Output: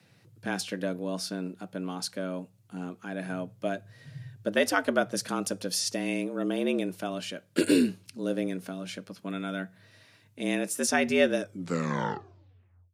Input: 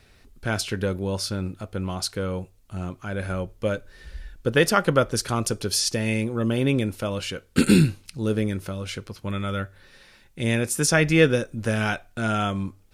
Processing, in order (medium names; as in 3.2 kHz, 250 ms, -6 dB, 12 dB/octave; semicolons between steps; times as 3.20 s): tape stop on the ending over 1.58 s; frequency shift +88 Hz; trim -6 dB